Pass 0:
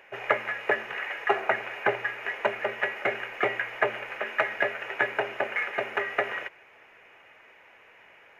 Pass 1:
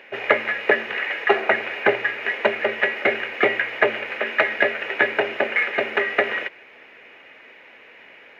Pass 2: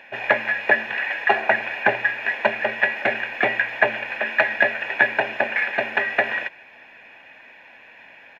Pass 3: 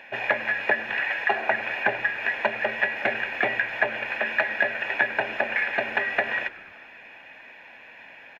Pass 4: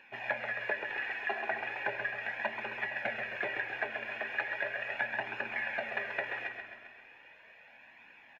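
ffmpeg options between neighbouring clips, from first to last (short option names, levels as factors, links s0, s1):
-af "equalizer=f=250:t=o:w=1:g=12,equalizer=f=500:t=o:w=1:g=6,equalizer=f=2000:t=o:w=1:g=6,equalizer=f=4000:t=o:w=1:g=12,equalizer=f=8000:t=o:w=1:g=-4"
-af "aecho=1:1:1.2:0.63,volume=0.891"
-filter_complex "[0:a]acompressor=threshold=0.0708:ratio=2,asplit=6[s0][s1][s2][s3][s4][s5];[s1]adelay=98,afreqshift=-100,volume=0.1[s6];[s2]adelay=196,afreqshift=-200,volume=0.061[s7];[s3]adelay=294,afreqshift=-300,volume=0.0372[s8];[s4]adelay=392,afreqshift=-400,volume=0.0226[s9];[s5]adelay=490,afreqshift=-500,volume=0.0138[s10];[s0][s6][s7][s8][s9][s10]amix=inputs=6:normalize=0"
-af "aecho=1:1:133|266|399|532|665|798|931|1064:0.473|0.274|0.159|0.0923|0.0535|0.0311|0.018|0.0104,flanger=delay=0.7:depth=2.3:regen=-40:speed=0.37:shape=triangular,volume=0.422"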